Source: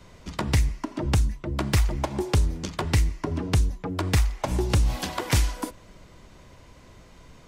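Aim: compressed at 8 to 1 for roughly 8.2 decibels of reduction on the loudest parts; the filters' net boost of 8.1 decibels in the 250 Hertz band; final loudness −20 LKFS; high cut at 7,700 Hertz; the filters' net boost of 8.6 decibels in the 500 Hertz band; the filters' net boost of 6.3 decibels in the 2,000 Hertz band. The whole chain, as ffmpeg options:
ffmpeg -i in.wav -af "lowpass=7700,equalizer=frequency=250:width_type=o:gain=8.5,equalizer=frequency=500:width_type=o:gain=8,equalizer=frequency=2000:width_type=o:gain=7,acompressor=threshold=-22dB:ratio=8,volume=8.5dB" out.wav

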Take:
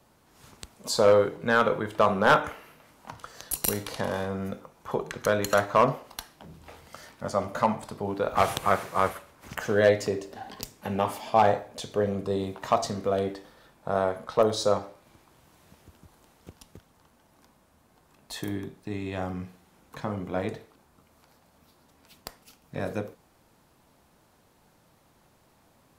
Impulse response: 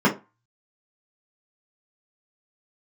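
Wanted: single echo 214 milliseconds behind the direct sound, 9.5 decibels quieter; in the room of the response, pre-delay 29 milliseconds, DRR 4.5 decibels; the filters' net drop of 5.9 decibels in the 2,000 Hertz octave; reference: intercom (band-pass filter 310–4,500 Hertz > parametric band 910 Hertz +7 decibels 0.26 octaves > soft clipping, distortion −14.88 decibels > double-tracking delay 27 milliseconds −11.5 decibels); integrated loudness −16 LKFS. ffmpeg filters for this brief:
-filter_complex "[0:a]equalizer=frequency=2000:width_type=o:gain=-9,aecho=1:1:214:0.335,asplit=2[link_01][link_02];[1:a]atrim=start_sample=2205,adelay=29[link_03];[link_02][link_03]afir=irnorm=-1:irlink=0,volume=-23dB[link_04];[link_01][link_04]amix=inputs=2:normalize=0,highpass=310,lowpass=4500,equalizer=frequency=910:width_type=o:width=0.26:gain=7,asoftclip=threshold=-13.5dB,asplit=2[link_05][link_06];[link_06]adelay=27,volume=-11.5dB[link_07];[link_05][link_07]amix=inputs=2:normalize=0,volume=11dB"

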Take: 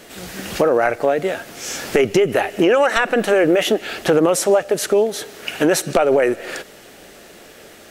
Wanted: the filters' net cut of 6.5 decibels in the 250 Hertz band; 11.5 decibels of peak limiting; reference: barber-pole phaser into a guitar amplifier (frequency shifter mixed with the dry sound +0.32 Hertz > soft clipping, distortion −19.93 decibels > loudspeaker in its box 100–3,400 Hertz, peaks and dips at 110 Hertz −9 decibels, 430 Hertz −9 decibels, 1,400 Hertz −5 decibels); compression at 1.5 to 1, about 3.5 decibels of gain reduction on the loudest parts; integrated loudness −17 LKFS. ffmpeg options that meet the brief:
ffmpeg -i in.wav -filter_complex "[0:a]equalizer=frequency=250:width_type=o:gain=-7,acompressor=threshold=-22dB:ratio=1.5,alimiter=limit=-18dB:level=0:latency=1,asplit=2[link_01][link_02];[link_02]afreqshift=0.32[link_03];[link_01][link_03]amix=inputs=2:normalize=1,asoftclip=threshold=-21.5dB,highpass=100,equalizer=frequency=110:width_type=q:width=4:gain=-9,equalizer=frequency=430:width_type=q:width=4:gain=-9,equalizer=frequency=1400:width_type=q:width=4:gain=-5,lowpass=frequency=3400:width=0.5412,lowpass=frequency=3400:width=1.3066,volume=17.5dB" out.wav

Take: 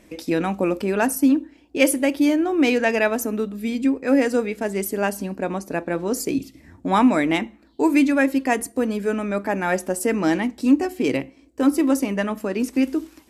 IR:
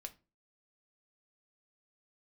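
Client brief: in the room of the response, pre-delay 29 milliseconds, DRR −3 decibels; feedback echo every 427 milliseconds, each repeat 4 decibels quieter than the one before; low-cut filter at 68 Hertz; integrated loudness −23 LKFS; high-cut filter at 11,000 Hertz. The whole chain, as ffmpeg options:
-filter_complex "[0:a]highpass=68,lowpass=11000,aecho=1:1:427|854|1281|1708|2135|2562|2989|3416|3843:0.631|0.398|0.25|0.158|0.0994|0.0626|0.0394|0.0249|0.0157,asplit=2[link_01][link_02];[1:a]atrim=start_sample=2205,adelay=29[link_03];[link_02][link_03]afir=irnorm=-1:irlink=0,volume=7.5dB[link_04];[link_01][link_04]amix=inputs=2:normalize=0,volume=-8dB"

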